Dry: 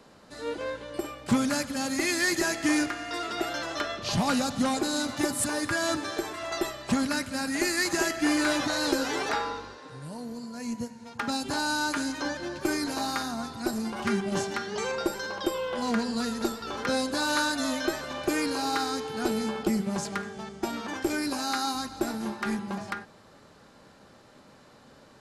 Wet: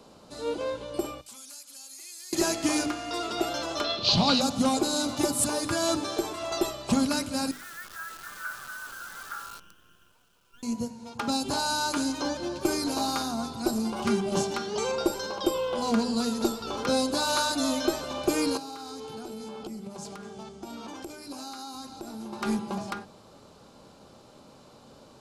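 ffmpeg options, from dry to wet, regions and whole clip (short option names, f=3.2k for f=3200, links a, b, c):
-filter_complex "[0:a]asettb=1/sr,asplit=3[a][b][c];[a]atrim=end=1.214[d];[b]atrim=start=1.21:end=2.33,asetpts=PTS-STARTPTS,afade=t=in:d=0.004:c=qsin,afade=t=out:st=1.116:d=0.004:c=qsin,aderivative,acompressor=threshold=-47dB:ratio=3:attack=3.2:release=140:knee=1:detection=peak[e];[c]atrim=start=2.326[f];[d][e]acrossfade=d=0.004:c1=hsin:c2=qsin[g];[g][f]acrossfade=d=0.004:c1=qsin:c2=hsin,asettb=1/sr,asplit=3[h][i][j];[h]atrim=end=3.844[k];[i]atrim=start=3.84:end=4.41,asetpts=PTS-STARTPTS,afade=t=in:d=0.004:c=qsin,afade=t=out:st=0.566:d=0.004:c=qsin,acrusher=bits=5:mode=log:mix=0:aa=0.000001,lowpass=f=4.2k:t=q:w=3.6[l];[j]atrim=start=4.406[m];[k][l]acrossfade=d=0.004:c1=hsin:c2=qsin[n];[n][m]acrossfade=d=0.004:c1=qsin:c2=hsin,asettb=1/sr,asplit=3[o][p][q];[o]atrim=end=7.514[r];[p]atrim=start=7.51:end=10.63,asetpts=PTS-STARTPTS,afade=t=in:d=0.004:c=qsin,afade=t=out:st=3.116:d=0.004:c=qsin,asuperpass=centerf=1500:order=4:qfactor=3.4,acrusher=bits=8:dc=4:mix=0:aa=0.000001[s];[q]atrim=start=10.626[t];[r][s]acrossfade=d=0.004:c1=hsin:c2=qsin[u];[u][t]acrossfade=d=0.004:c1=qsin:c2=hsin,asettb=1/sr,asplit=3[v][w][x];[v]atrim=end=18.574[y];[w]atrim=start=18.57:end=22.33,asetpts=PTS-STARTPTS,afade=t=in:d=0.004:c=qsin,afade=t=out:st=3.756:d=0.004:c=qsin,flanger=delay=6.1:depth=2.6:regen=-80:speed=1.2:shape=triangular,acompressor=threshold=-37dB:ratio=12:attack=3.2:release=140:knee=1:detection=peak[z];[x]atrim=start=22.326[aa];[y][z]acrossfade=d=0.004:c1=hsin:c2=qsin[ab];[ab][aa]acrossfade=d=0.004:c1=qsin:c2=hsin,equalizer=f=1.8k:w=2.5:g=-13,bandreject=f=50:t=h:w=6,bandreject=f=100:t=h:w=6,bandreject=f=150:t=h:w=6,bandreject=f=200:t=h:w=6,bandreject=f=250:t=h:w=6,bandreject=f=300:t=h:w=6,volume=3dB"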